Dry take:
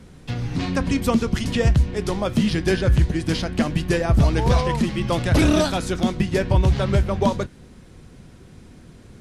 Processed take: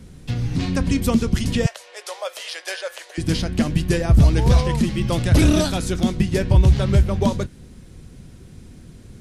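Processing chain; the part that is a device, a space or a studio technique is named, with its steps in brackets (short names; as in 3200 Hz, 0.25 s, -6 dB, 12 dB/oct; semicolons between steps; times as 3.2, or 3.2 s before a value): 1.66–3.18 elliptic high-pass 540 Hz, stop band 60 dB; smiley-face EQ (low shelf 180 Hz +5 dB; bell 990 Hz -4 dB 2 oct; high shelf 7300 Hz +6.5 dB)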